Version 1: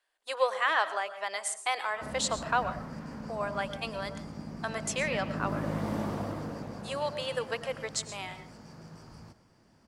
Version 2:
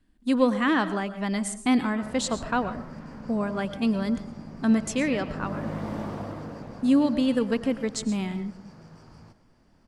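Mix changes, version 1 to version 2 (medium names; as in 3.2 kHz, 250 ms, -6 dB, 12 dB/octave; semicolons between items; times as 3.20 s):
speech: remove inverse Chebyshev high-pass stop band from 270 Hz, stop band 40 dB; background: add treble shelf 7.4 kHz -9.5 dB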